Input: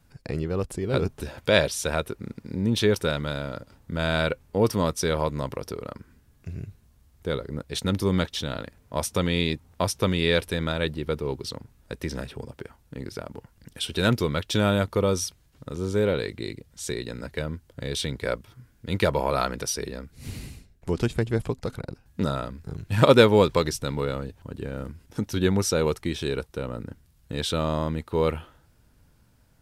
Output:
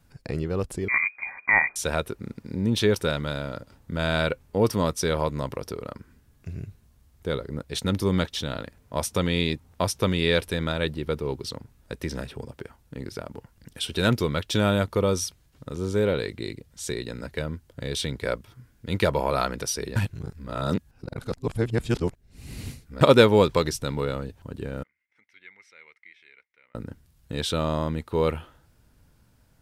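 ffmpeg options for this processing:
ffmpeg -i in.wav -filter_complex "[0:a]asettb=1/sr,asplit=3[link_01][link_02][link_03];[link_01]atrim=end=0.884[link_04];[link_02]atrim=start=0.88:end=1.76,asetpts=PTS-STARTPTS,afade=type=in:duration=0.004:curve=qsin,afade=type=out:start_time=0.876:duration=0.004:curve=qsin,lowpass=frequency=2100:width_type=q:width=0.5098,lowpass=frequency=2100:width_type=q:width=0.6013,lowpass=frequency=2100:width_type=q:width=0.9,lowpass=frequency=2100:width_type=q:width=2.563,afreqshift=-2500[link_05];[link_03]atrim=start=1.756[link_06];[link_04][link_05]acrossfade=duration=0.004:curve1=hsin:curve2=qsin[link_07];[link_07][link_06]acrossfade=duration=0.004:curve1=qsin:curve2=hsin,asettb=1/sr,asplit=3[link_08][link_09][link_10];[link_08]atrim=end=24.834[link_11];[link_09]atrim=start=24.83:end=26.75,asetpts=PTS-STARTPTS,afade=type=in:duration=0.004:curve=qsin,afade=type=out:start_time=1.916:duration=0.004:curve=qsin,bandpass=frequency=2100:width_type=q:width=18[link_12];[link_10]atrim=start=26.746[link_13];[link_11][link_12]acrossfade=duration=0.004:curve1=hsin:curve2=qsin[link_14];[link_14][link_13]acrossfade=duration=0.004:curve1=qsin:curve2=hsin,asplit=3[link_15][link_16][link_17];[link_15]atrim=end=19.962[link_18];[link_16]atrim=start=19.958:end=23.012,asetpts=PTS-STARTPTS,areverse[link_19];[link_17]atrim=start=23.008[link_20];[link_18][link_19]acrossfade=duration=0.004:curve1=hsin:curve2=hsin[link_21];[link_21][link_20]acrossfade=duration=0.004:curve1=hsin:curve2=hsin" out.wav

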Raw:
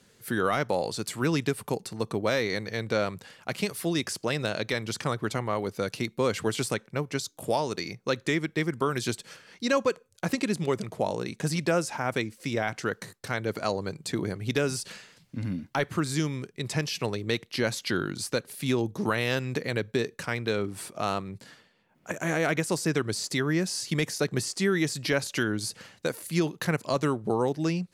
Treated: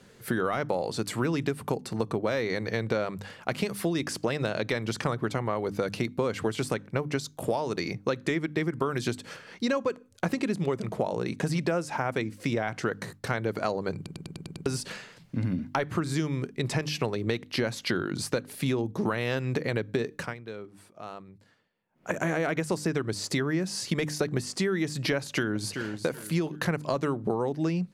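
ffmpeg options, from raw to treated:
ffmpeg -i in.wav -filter_complex "[0:a]asplit=2[link_01][link_02];[link_02]afade=type=in:start_time=25.17:duration=0.01,afade=type=out:start_time=25.71:duration=0.01,aecho=0:1:380|760|1140:0.223872|0.0671616|0.0201485[link_03];[link_01][link_03]amix=inputs=2:normalize=0,asplit=10[link_04][link_05][link_06][link_07][link_08][link_09][link_10][link_11][link_12][link_13];[link_04]atrim=end=14.062[link_14];[link_05]atrim=start=13.958:end=14.062[link_15];[link_06]atrim=start=13.958:end=14.062[link_16];[link_07]atrim=start=13.958:end=14.062[link_17];[link_08]atrim=start=13.958:end=14.062[link_18];[link_09]atrim=start=13.958:end=14.062[link_19];[link_10]atrim=start=13.958:end=14.062[link_20];[link_11]atrim=start=14.658:end=20.34,asetpts=PTS-STARTPTS,afade=type=out:start_time=5.502:duration=0.18:silence=0.11885[link_21];[link_12]atrim=start=20.34:end=21.92,asetpts=PTS-STARTPTS,volume=-18.5dB[link_22];[link_13]atrim=start=21.92,asetpts=PTS-STARTPTS,afade=type=in:duration=0.18:silence=0.11885[link_23];[link_14][link_15]acrossfade=duration=0.004:curve1=hsin:curve2=hsin[link_24];[link_24][link_16]acrossfade=duration=0.004:curve1=hsin:curve2=hsin[link_25];[link_25][link_17]acrossfade=duration=0.004:curve1=hsin:curve2=hsin[link_26];[link_26][link_18]acrossfade=duration=0.004:curve1=hsin:curve2=hsin[link_27];[link_27][link_19]acrossfade=duration=0.004:curve1=hsin:curve2=hsin[link_28];[link_28][link_20]acrossfade=duration=0.004:curve1=hsin:curve2=hsin[link_29];[link_21][link_22][link_23]concat=n=3:v=0:a=1[link_30];[link_29][link_30]acrossfade=duration=0.004:curve1=hsin:curve2=hsin,highshelf=frequency=2900:gain=-9,bandreject=frequency=50:width_type=h:width=6,bandreject=frequency=100:width_type=h:width=6,bandreject=frequency=150:width_type=h:width=6,bandreject=frequency=200:width_type=h:width=6,bandreject=frequency=250:width_type=h:width=6,bandreject=frequency=300:width_type=h:width=6,acompressor=threshold=-32dB:ratio=6,volume=7.5dB" out.wav

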